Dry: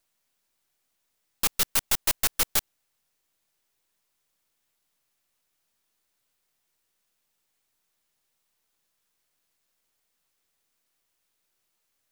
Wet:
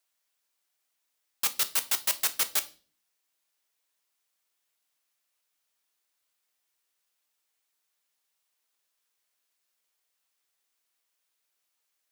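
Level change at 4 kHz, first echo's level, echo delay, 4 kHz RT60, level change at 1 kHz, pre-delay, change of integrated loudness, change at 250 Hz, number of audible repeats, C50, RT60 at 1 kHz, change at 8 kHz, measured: −2.0 dB, no echo audible, no echo audible, 0.40 s, −4.0 dB, 6 ms, −2.0 dB, −11.0 dB, no echo audible, 18.0 dB, 0.35 s, −2.0 dB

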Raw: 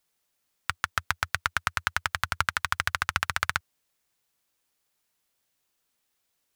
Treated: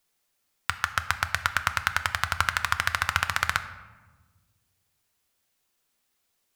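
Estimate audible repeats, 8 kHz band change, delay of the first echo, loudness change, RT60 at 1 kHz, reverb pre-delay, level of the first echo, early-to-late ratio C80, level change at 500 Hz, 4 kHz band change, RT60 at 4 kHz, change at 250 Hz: no echo audible, +1.5 dB, no echo audible, +2.0 dB, 1.2 s, 3 ms, no echo audible, 13.5 dB, +2.0 dB, +2.0 dB, 0.75 s, +2.0 dB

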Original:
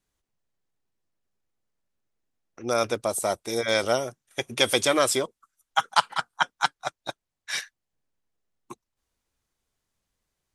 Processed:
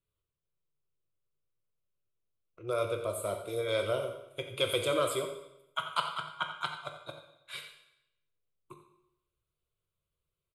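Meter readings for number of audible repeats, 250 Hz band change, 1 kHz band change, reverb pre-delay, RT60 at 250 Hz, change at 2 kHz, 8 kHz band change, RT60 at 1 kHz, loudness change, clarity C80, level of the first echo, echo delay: 1, −10.0 dB, −10.0 dB, 14 ms, 0.80 s, −10.5 dB, −13.5 dB, 0.85 s, −8.0 dB, 8.5 dB, −12.5 dB, 88 ms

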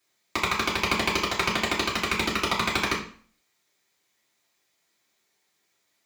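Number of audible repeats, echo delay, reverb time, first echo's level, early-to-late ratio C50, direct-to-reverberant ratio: no echo audible, no echo audible, 0.45 s, no echo audible, 8.0 dB, −5.5 dB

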